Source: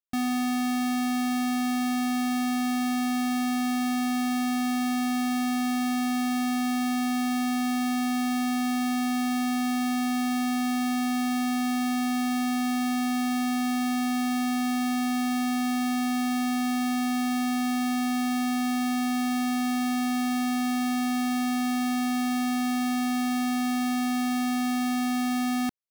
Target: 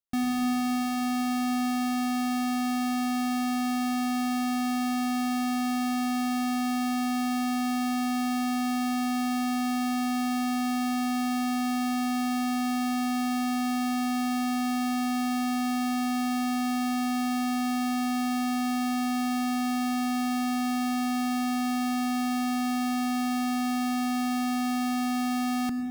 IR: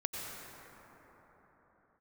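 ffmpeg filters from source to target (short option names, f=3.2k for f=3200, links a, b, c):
-filter_complex "[0:a]asplit=2[a][b];[1:a]atrim=start_sample=2205,lowshelf=f=490:g=11.5[c];[b][c]afir=irnorm=-1:irlink=0,volume=-9dB[d];[a][d]amix=inputs=2:normalize=0,volume=-4.5dB"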